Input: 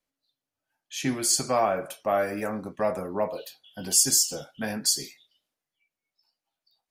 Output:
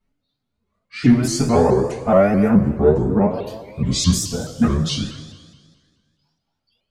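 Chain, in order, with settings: trilling pitch shifter -6 st, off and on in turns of 0.515 s; RIAA curve playback; two-slope reverb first 0.2 s, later 1.7 s, from -18 dB, DRR -8.5 dB; shaped vibrato saw up 4.7 Hz, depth 160 cents; gain -1 dB

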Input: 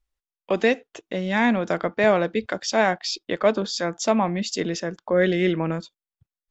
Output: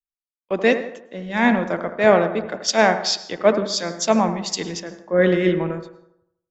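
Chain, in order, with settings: analogue delay 82 ms, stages 1024, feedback 69%, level -9 dB; on a send at -14 dB: reverb RT60 0.70 s, pre-delay 0.1 s; on the sum: three-band expander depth 100%; gain +1.5 dB

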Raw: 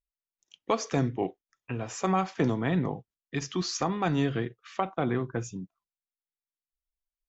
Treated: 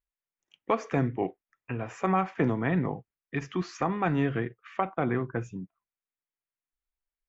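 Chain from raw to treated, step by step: resonant high shelf 3100 Hz -11.5 dB, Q 1.5

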